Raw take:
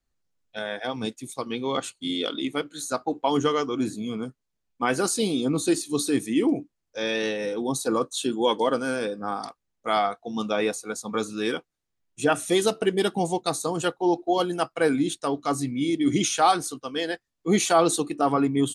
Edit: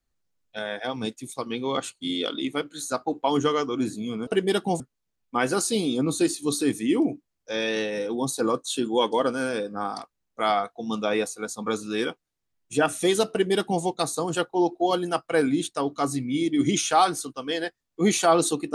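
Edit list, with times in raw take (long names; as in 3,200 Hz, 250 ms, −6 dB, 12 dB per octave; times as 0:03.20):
0:12.77–0:13.30: duplicate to 0:04.27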